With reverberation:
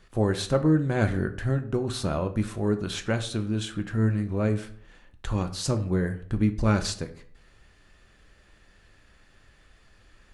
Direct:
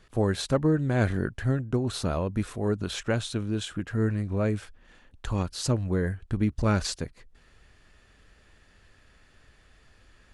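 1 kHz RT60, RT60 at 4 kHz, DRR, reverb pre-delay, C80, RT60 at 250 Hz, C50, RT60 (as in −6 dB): 0.50 s, 0.40 s, 7.0 dB, 3 ms, 17.0 dB, 0.60 s, 13.5 dB, 0.55 s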